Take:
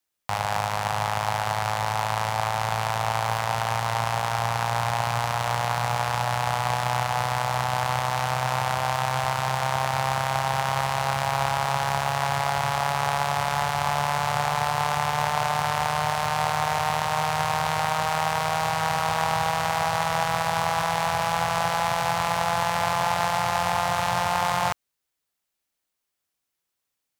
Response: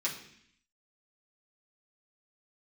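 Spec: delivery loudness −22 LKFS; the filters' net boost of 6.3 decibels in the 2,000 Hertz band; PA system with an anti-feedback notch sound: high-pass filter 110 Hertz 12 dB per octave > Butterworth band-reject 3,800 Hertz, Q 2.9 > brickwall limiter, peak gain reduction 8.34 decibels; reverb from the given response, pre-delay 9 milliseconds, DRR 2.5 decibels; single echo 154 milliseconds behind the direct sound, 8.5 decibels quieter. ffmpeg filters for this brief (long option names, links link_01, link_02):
-filter_complex "[0:a]equalizer=frequency=2000:width_type=o:gain=8,aecho=1:1:154:0.376,asplit=2[link_01][link_02];[1:a]atrim=start_sample=2205,adelay=9[link_03];[link_02][link_03]afir=irnorm=-1:irlink=0,volume=-7.5dB[link_04];[link_01][link_04]amix=inputs=2:normalize=0,highpass=110,asuperstop=centerf=3800:order=8:qfactor=2.9,volume=2dB,alimiter=limit=-11dB:level=0:latency=1"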